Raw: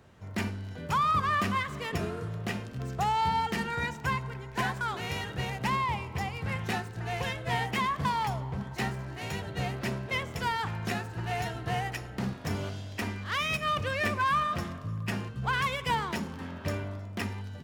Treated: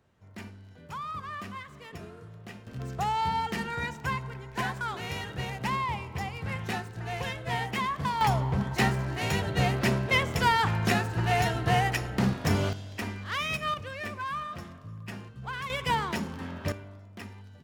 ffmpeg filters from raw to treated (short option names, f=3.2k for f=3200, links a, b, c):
-af "asetnsamples=n=441:p=0,asendcmd='2.67 volume volume -1dB;8.21 volume volume 7dB;12.73 volume volume -1dB;13.74 volume volume -7.5dB;15.7 volume volume 1.5dB;16.72 volume volume -9dB',volume=-11dB"